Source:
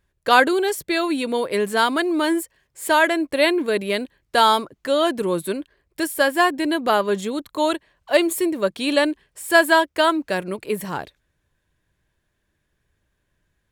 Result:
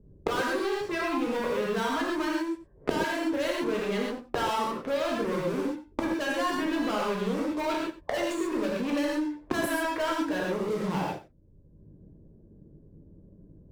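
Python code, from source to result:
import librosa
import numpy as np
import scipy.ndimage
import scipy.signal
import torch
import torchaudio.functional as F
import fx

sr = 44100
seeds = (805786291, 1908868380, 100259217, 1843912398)

p1 = fx.notch(x, sr, hz=740.0, q=18.0)
p2 = fx.env_lowpass(p1, sr, base_hz=370.0, full_db=-13.0)
p3 = fx.hum_notches(p2, sr, base_hz=60, count=6)
p4 = fx.env_lowpass(p3, sr, base_hz=480.0, full_db=-13.5)
p5 = fx.dynamic_eq(p4, sr, hz=1000.0, q=0.73, threshold_db=-30.0, ratio=4.0, max_db=5)
p6 = fx.over_compress(p5, sr, threshold_db=-26.0, ratio=-1.0)
p7 = p5 + (p6 * librosa.db_to_amplitude(0.5))
p8 = fx.leveller(p7, sr, passes=5)
p9 = fx.gate_flip(p8, sr, shuts_db=-17.0, range_db=-31)
p10 = p9 + 10.0 ** (-18.0 / 20.0) * np.pad(p9, (int(91 * sr / 1000.0), 0))[:len(p9)]
p11 = fx.rev_gated(p10, sr, seeds[0], gate_ms=160, shape='flat', drr_db=-3.5)
y = fx.band_squash(p11, sr, depth_pct=70)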